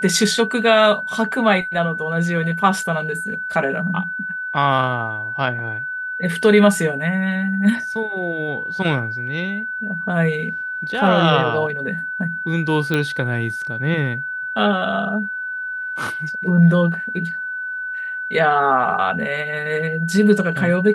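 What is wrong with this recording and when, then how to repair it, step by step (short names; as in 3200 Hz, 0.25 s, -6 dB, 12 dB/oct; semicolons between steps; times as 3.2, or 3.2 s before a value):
tone 1500 Hz -24 dBFS
12.94 pop -9 dBFS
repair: de-click; notch 1500 Hz, Q 30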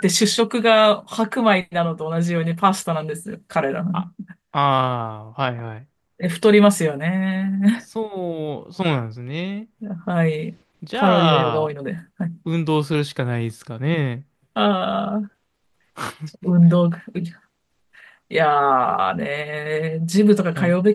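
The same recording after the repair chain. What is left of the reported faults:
none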